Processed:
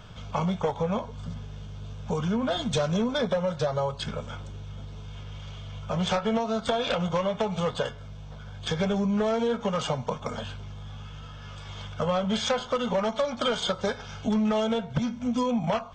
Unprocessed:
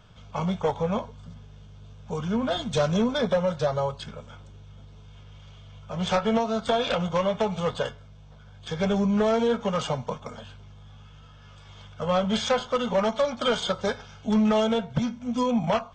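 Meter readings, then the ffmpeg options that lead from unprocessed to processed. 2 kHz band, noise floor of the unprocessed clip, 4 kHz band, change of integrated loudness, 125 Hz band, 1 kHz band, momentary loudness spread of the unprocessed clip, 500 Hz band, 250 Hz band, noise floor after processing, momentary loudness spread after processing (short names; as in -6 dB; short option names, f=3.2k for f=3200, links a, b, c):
-1.0 dB, -49 dBFS, 0.0 dB, -2.0 dB, 0.0 dB, -2.0 dB, 13 LU, -2.0 dB, -1.5 dB, -42 dBFS, 15 LU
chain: -af "acompressor=threshold=-34dB:ratio=3,volume=7.5dB"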